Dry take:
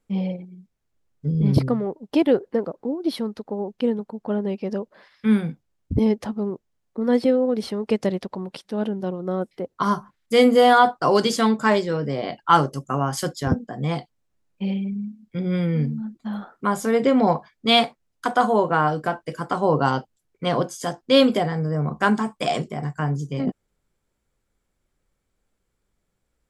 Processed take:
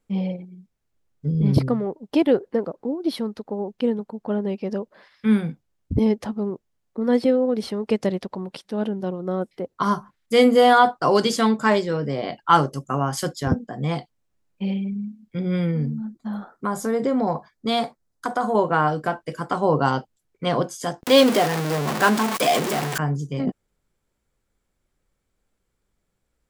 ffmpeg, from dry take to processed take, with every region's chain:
ffmpeg -i in.wav -filter_complex "[0:a]asettb=1/sr,asplit=3[link_01][link_02][link_03];[link_01]atrim=end=15.714[link_04];[link_02]atrim=start=15.71:end=18.55,asetpts=PTS-STARTPTS,afade=type=in:duration=0.004:curve=qsin,afade=type=out:start_time=2.836:duration=0.004:curve=qsin,equalizer=frequency=2700:width_type=o:width=0.8:gain=-9.5,acompressor=threshold=-20dB:ratio=2:attack=3.2:release=140:knee=1:detection=peak[link_05];[link_03]atrim=start=18.546[link_06];[link_04][link_05]acrossfade=duration=0.004:curve1=hsin:curve2=qsin[link_07];[link_07][link_06]acrossfade=duration=0.004:curve1=qsin:curve2=hsin,asettb=1/sr,asplit=3[link_08][link_09][link_10];[link_08]atrim=end=21.034[link_11];[link_09]atrim=start=21.03:end=22.98,asetpts=PTS-STARTPTS,afade=type=in:duration=0.004:curve=qsin,afade=type=out:start_time=1.946:duration=0.004:curve=qsin,aeval=exprs='val(0)+0.5*0.119*sgn(val(0))':channel_layout=same,highpass=240,acompressor=mode=upward:threshold=-21dB:ratio=2.5:attack=3.2:release=140:knee=2.83:detection=peak[link_12];[link_10]atrim=start=22.976[link_13];[link_11][link_12]acrossfade=duration=0.004:curve1=hsin:curve2=qsin[link_14];[link_14][link_13]acrossfade=duration=0.004:curve1=qsin:curve2=hsin" out.wav

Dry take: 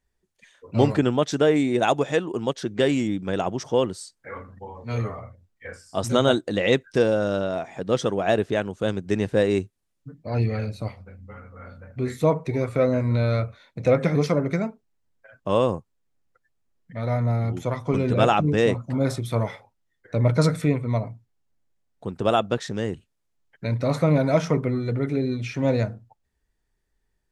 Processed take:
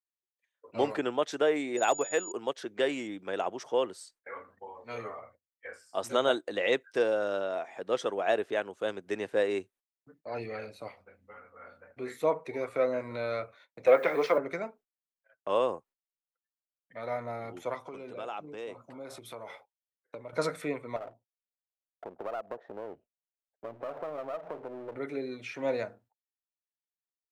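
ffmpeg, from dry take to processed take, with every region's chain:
ffmpeg -i in.wav -filter_complex "[0:a]asettb=1/sr,asplit=3[link_01][link_02][link_03];[link_01]atrim=end=1.774[link_04];[link_02]atrim=start=1.77:end=2.32,asetpts=PTS-STARTPTS,afade=type=in:duration=0.004:curve=qsin,afade=type=out:start_time=0.546:duration=0.004:curve=qsin,agate=range=-33dB:threshold=-28dB:ratio=3:release=100:detection=peak,aeval=exprs='val(0)+0.0355*sin(2*PI*6900*n/s)':channel_layout=same,asoftclip=type=hard:threshold=-10dB[link_05];[link_03]atrim=start=2.316[link_06];[link_04][link_05]acrossfade=duration=0.004:curve1=hsin:curve2=qsin[link_07];[link_07][link_06]acrossfade=duration=0.004:curve1=qsin:curve2=hsin,asettb=1/sr,asplit=3[link_08][link_09][link_10];[link_08]atrim=end=13.874[link_11];[link_09]atrim=start=13.87:end=14.38,asetpts=PTS-STARTPTS,afade=type=in:duration=0.004:curve=qsin,afade=type=out:start_time=0.506:duration=0.004:curve=qsin,acontrast=63,acrossover=split=310 4300:gain=0.2 1 0.251[link_12][link_13][link_14];[link_12][link_13][link_14]amix=inputs=3:normalize=0,acrusher=bits=7:mix=0:aa=0.5[link_15];[link_10]atrim=start=14.376[link_16];[link_11][link_15]acrossfade=duration=0.004:curve1=hsin:curve2=qsin[link_17];[link_17][link_16]acrossfade=duration=0.004:curve1=qsin:curve2=hsin,asettb=1/sr,asplit=3[link_18][link_19][link_20];[link_18]atrim=end=17.754[link_21];[link_19]atrim=start=17.75:end=20.33,asetpts=PTS-STARTPTS,afade=type=in:duration=0.004:curve=qsin,afade=type=out:start_time=2.576:duration=0.004:curve=qsin,acompressor=threshold=-28dB:ratio=6:attack=3.2:release=140:knee=1:detection=peak,equalizer=frequency=1800:width_type=o:width=0.24:gain=-7.5[link_22];[link_20]atrim=start=20.326[link_23];[link_21][link_22]acrossfade=duration=0.004:curve1=hsin:curve2=qsin[link_24];[link_24][link_23]acrossfade=duration=0.004:curve1=qsin:curve2=hsin,asettb=1/sr,asplit=3[link_25][link_26][link_27];[link_25]atrim=end=20.964[link_28];[link_26]atrim=start=20.96:end=24.96,asetpts=PTS-STARTPTS,afade=type=in:duration=0.004:curve=qsin,afade=type=out:start_time=3.996:duration=0.004:curve=qsin,lowpass=frequency=670:width_type=q:width=3.5,acompressor=threshold=-25dB:ratio=6:attack=3.2:release=140:knee=1:detection=peak,aeval=exprs='clip(val(0),-1,0.0133)':channel_layout=same[link_29];[link_27]atrim=start=24.956[link_30];[link_28][link_29]acrossfade=duration=0.004:curve1=hsin:curve2=qsin[link_31];[link_31][link_30]acrossfade=duration=0.004:curve1=qsin:curve2=hsin,aemphasis=mode=production:type=50kf,agate=range=-24dB:threshold=-46dB:ratio=16:detection=peak,acrossover=split=330 3100:gain=0.0794 1 0.224[link_32][link_33][link_34];[link_32][link_33][link_34]amix=inputs=3:normalize=0,volume=-5dB" out.wav

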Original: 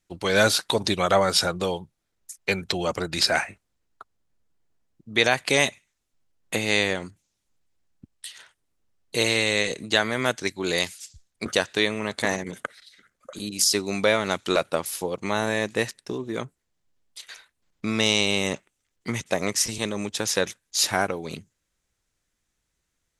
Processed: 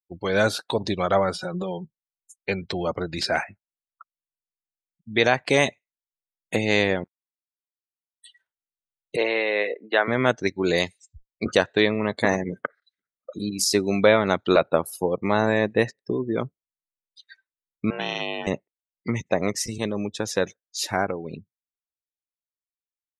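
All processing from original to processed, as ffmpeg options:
ffmpeg -i in.wav -filter_complex "[0:a]asettb=1/sr,asplit=3[link_01][link_02][link_03];[link_01]atrim=end=1.354[link_04];[link_02]atrim=start=1.35:end=2.34,asetpts=PTS-STARTPTS,afade=type=in:duration=0.004:curve=qsin,afade=type=out:start_time=0.986:duration=0.004:curve=qsin,aecho=1:1:5.4:0.95,atrim=end_sample=43659,acompressor=threshold=-23dB:ratio=16:attack=3.2:release=140:knee=1:detection=peak[link_05];[link_03]atrim=start=2.336[link_06];[link_04][link_05]acrossfade=duration=0.004:curve1=hsin:curve2=qsin[link_07];[link_07][link_06]acrossfade=duration=0.004:curve1=qsin:curve2=hsin,asettb=1/sr,asplit=3[link_08][link_09][link_10];[link_08]atrim=end=7.044[link_11];[link_09]atrim=start=7.04:end=8.29,asetpts=PTS-STARTPTS,afade=type=in:duration=0.004:curve=qsin,afade=type=out:start_time=1.246:duration=0.004:curve=qsin,highpass=910,aeval=exprs='sgn(val(0))*max(abs(val(0))-0.00316,0)':channel_layout=same[link_12];[link_10]atrim=start=8.286[link_13];[link_11][link_12]acrossfade=duration=0.004:curve1=hsin:curve2=qsin[link_14];[link_14][link_13]acrossfade=duration=0.004:curve1=qsin:curve2=hsin,asettb=1/sr,asplit=3[link_15][link_16][link_17];[link_15]atrim=end=9.164[link_18];[link_16]atrim=start=9.16:end=10.08,asetpts=PTS-STARTPTS,afade=type=in:duration=0.004:curve=qsin,afade=type=out:start_time=0.916:duration=0.004:curve=qsin,lowpass=frequency=6900:width=0.5412,lowpass=frequency=6900:width=1.3066,acrossover=split=340 3000:gain=0.0891 1 0.2[link_19][link_20][link_21];[link_19][link_20][link_21]amix=inputs=3:normalize=0[link_22];[link_17]atrim=start=10.076[link_23];[link_18][link_22]acrossfade=duration=0.004:curve1=hsin:curve2=qsin[link_24];[link_24][link_23]acrossfade=duration=0.004:curve1=qsin:curve2=hsin,asettb=1/sr,asplit=3[link_25][link_26][link_27];[link_25]atrim=end=17.904[link_28];[link_26]atrim=start=17.9:end=18.47,asetpts=PTS-STARTPTS,afade=type=in:duration=0.004:curve=qsin,afade=type=out:start_time=0.566:duration=0.004:curve=qsin,aeval=exprs='val(0)*sin(2*PI*250*n/s)':channel_layout=same,highpass=frequency=210:width=0.5412,highpass=frequency=210:width=1.3066,equalizer=frequency=300:width_type=q:width=4:gain=-9,equalizer=frequency=480:width_type=q:width=4:gain=-8,equalizer=frequency=720:width_type=q:width=4:gain=-4,equalizer=frequency=1500:width_type=q:width=4:gain=4,equalizer=frequency=2200:width_type=q:width=4:gain=-6,equalizer=frequency=4000:width_type=q:width=4:gain=-9,lowpass=frequency=5300:width=0.5412,lowpass=frequency=5300:width=1.3066[link_29];[link_27]atrim=start=18.466[link_30];[link_28][link_29]acrossfade=duration=0.004:curve1=hsin:curve2=qsin[link_31];[link_31][link_30]acrossfade=duration=0.004:curve1=qsin:curve2=hsin,afftdn=noise_reduction=36:noise_floor=-35,highshelf=frequency=2200:gain=-9,dynaudnorm=framelen=740:gausssize=13:maxgain=8dB" out.wav

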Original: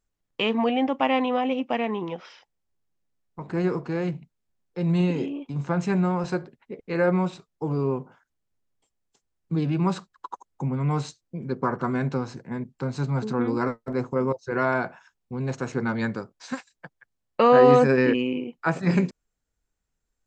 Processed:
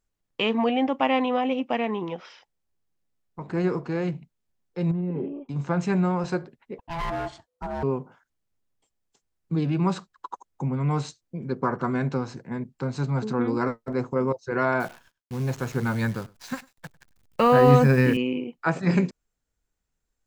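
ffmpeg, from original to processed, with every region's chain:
ffmpeg -i in.wav -filter_complex "[0:a]asettb=1/sr,asplit=3[link_01][link_02][link_03];[link_01]atrim=end=4.914[link_04];[link_02]atrim=start=4.91:end=5.49,asetpts=PTS-STARTPTS,afade=type=in:duration=0.004:curve=qsin,afade=type=out:start_time=0.576:duration=0.004:curve=qsin,lowpass=1000,aecho=1:1:5.1:0.4,atrim=end_sample=25578,acompressor=threshold=-24dB:ratio=10:attack=3.2:release=140:knee=1:detection=peak[link_05];[link_03]atrim=start=5.486[link_06];[link_04][link_05]acrossfade=duration=0.004:curve1=hsin:curve2=qsin[link_07];[link_07][link_06]acrossfade=duration=0.004:curve1=qsin:curve2=hsin,asettb=1/sr,asplit=3[link_08][link_09][link_10];[link_08]atrim=end=6.784[link_11];[link_09]atrim=start=6.78:end=7.83,asetpts=PTS-STARTPTS,afade=type=in:duration=0.004:curve=qsin,afade=type=out:start_time=1.046:duration=0.004:curve=qsin,aeval=exprs='val(0)*sin(2*PI*500*n/s)':channel_layout=same,equalizer=frequency=350:width=3.9:gain=-8.5,volume=25.5dB,asoftclip=hard,volume=-25.5dB[link_12];[link_10]atrim=start=7.826[link_13];[link_11][link_12]acrossfade=duration=0.004:curve1=hsin:curve2=qsin[link_14];[link_14][link_13]acrossfade=duration=0.004:curve1=qsin:curve2=hsin,asettb=1/sr,asplit=3[link_15][link_16][link_17];[link_15]atrim=end=14.804[link_18];[link_16]atrim=start=14.8:end=18.17,asetpts=PTS-STARTPTS,afade=type=in:duration=0.004:curve=qsin,afade=type=out:start_time=3.366:duration=0.004:curve=qsin,asubboost=boost=7.5:cutoff=140,acrusher=bits=8:dc=4:mix=0:aa=0.000001,aecho=1:1:100:0.0631,atrim=end_sample=148617[link_19];[link_17]atrim=start=18.166[link_20];[link_18][link_19]acrossfade=duration=0.004:curve1=hsin:curve2=qsin[link_21];[link_21][link_20]acrossfade=duration=0.004:curve1=qsin:curve2=hsin" out.wav

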